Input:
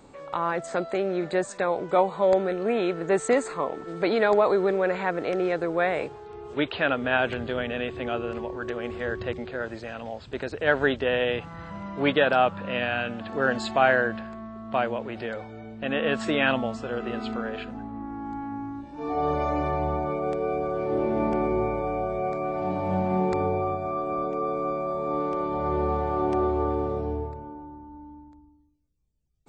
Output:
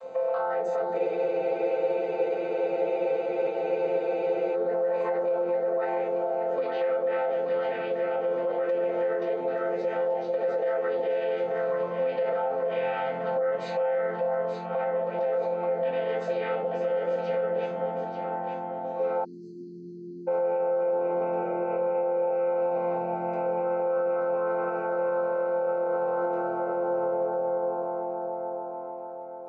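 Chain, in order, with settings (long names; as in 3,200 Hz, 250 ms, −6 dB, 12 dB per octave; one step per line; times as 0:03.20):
channel vocoder with a chord as carrier major triad, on F3
mains-hum notches 60/120/180 Hz
convolution reverb RT60 0.35 s, pre-delay 3 ms, DRR −3 dB
downward compressor 6 to 1, threshold −31 dBFS, peak gain reduction 18 dB
low-pass filter 5,900 Hz 12 dB per octave
delay that swaps between a low-pass and a high-pass 441 ms, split 830 Hz, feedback 63%, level −3 dB
dynamic equaliser 2,400 Hz, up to −4 dB, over −53 dBFS, Q 1.1
time-frequency box erased 0:19.24–0:20.28, 410–4,000 Hz
low shelf with overshoot 360 Hz −12 dB, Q 3
brickwall limiter −25.5 dBFS, peak gain reduction 11 dB
frozen spectrum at 0:00.99, 3.56 s
level +5.5 dB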